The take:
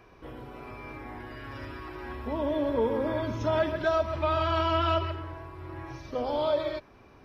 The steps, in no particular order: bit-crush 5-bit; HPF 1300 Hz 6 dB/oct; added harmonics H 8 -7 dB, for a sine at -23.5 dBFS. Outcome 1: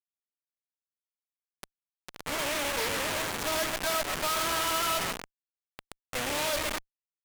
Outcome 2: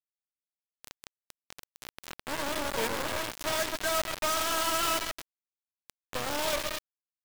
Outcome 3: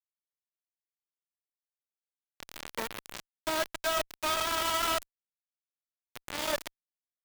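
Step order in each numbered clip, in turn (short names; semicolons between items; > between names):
bit-crush > HPF > added harmonics; HPF > added harmonics > bit-crush; HPF > bit-crush > added harmonics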